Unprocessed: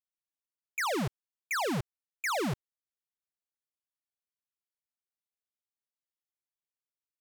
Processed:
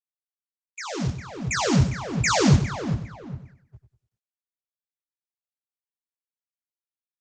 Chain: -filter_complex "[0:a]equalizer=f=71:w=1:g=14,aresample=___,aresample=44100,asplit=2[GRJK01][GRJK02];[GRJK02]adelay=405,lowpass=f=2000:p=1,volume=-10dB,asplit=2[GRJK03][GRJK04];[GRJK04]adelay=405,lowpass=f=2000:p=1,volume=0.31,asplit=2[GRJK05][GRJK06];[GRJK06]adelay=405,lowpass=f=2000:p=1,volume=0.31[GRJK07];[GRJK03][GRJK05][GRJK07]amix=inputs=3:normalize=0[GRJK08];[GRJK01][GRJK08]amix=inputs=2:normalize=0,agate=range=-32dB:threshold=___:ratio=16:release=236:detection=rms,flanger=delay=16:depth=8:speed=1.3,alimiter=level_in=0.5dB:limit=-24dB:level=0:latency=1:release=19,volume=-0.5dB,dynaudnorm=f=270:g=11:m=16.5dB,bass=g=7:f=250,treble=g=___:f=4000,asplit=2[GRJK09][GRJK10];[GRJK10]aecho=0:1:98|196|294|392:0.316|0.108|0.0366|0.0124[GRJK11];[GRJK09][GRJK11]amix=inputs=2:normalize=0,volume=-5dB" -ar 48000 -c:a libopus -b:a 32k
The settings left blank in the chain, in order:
16000, -55dB, 14